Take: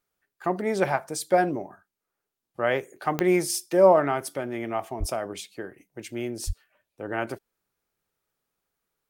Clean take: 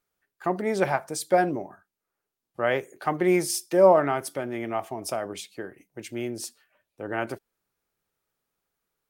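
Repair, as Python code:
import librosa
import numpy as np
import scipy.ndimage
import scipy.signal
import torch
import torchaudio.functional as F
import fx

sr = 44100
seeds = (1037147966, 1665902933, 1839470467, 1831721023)

y = fx.fix_declick_ar(x, sr, threshold=10.0)
y = fx.fix_deplosive(y, sr, at_s=(4.99, 6.46))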